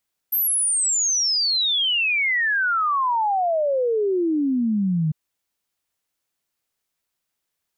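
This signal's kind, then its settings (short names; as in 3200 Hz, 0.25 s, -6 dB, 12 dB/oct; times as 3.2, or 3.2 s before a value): log sweep 13000 Hz -> 150 Hz 4.80 s -18 dBFS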